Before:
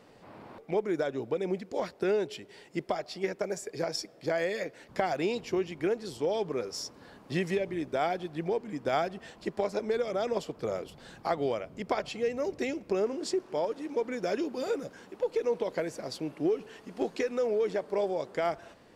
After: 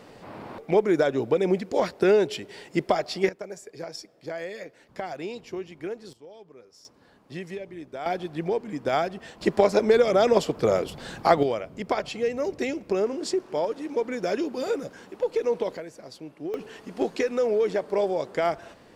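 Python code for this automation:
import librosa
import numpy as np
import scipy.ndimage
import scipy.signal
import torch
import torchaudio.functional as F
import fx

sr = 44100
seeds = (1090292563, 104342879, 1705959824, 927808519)

y = fx.gain(x, sr, db=fx.steps((0.0, 8.5), (3.29, -4.5), (6.13, -17.0), (6.85, -6.0), (8.06, 4.0), (9.41, 11.0), (11.43, 4.0), (15.77, -5.5), (16.54, 5.0)))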